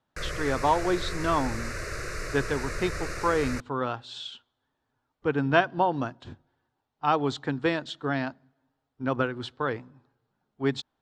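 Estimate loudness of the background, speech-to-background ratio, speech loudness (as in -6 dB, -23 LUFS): -35.0 LUFS, 6.5 dB, -28.5 LUFS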